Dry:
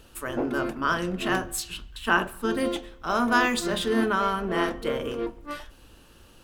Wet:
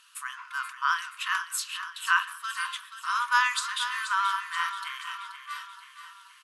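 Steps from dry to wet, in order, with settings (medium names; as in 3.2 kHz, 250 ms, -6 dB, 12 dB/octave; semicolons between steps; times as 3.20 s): FFT band-pass 940–12000 Hz; on a send: feedback delay 480 ms, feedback 53%, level -10.5 dB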